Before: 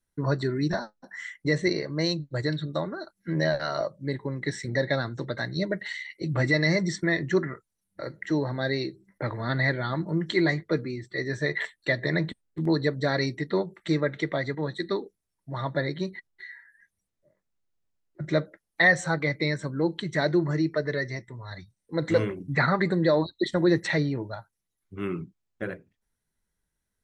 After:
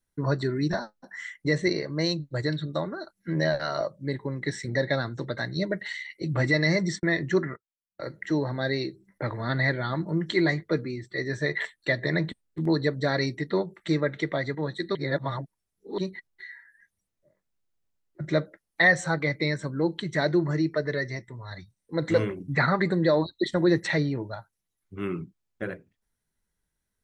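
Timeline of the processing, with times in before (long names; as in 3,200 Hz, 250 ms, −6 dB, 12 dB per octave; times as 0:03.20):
0:06.44–0:08.02: noise gate −41 dBFS, range −26 dB
0:14.95–0:15.98: reverse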